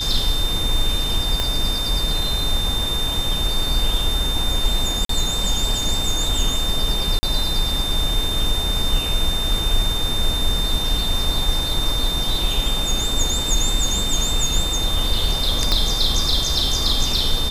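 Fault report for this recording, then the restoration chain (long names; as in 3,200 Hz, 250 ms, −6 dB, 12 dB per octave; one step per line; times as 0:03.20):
whistle 3,600 Hz −23 dBFS
0:01.40: click −7 dBFS
0:05.05–0:05.09: drop-out 43 ms
0:07.19–0:07.23: drop-out 40 ms
0:15.72: click −5 dBFS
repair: click removal
notch filter 3,600 Hz, Q 30
repair the gap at 0:05.05, 43 ms
repair the gap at 0:07.19, 40 ms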